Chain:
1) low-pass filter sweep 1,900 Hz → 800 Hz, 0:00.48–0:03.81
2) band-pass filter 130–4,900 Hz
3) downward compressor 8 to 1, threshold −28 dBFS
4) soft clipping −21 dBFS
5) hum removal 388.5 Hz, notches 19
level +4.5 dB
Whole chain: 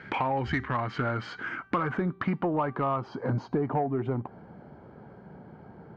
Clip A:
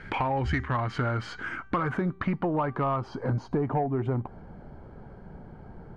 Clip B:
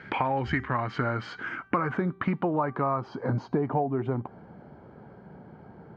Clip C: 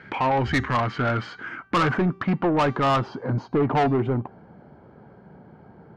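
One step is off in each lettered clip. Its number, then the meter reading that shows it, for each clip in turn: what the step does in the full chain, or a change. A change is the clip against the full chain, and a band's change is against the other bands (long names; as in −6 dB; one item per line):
2, 125 Hz band +2.5 dB
4, change in crest factor +4.5 dB
3, average gain reduction 6.0 dB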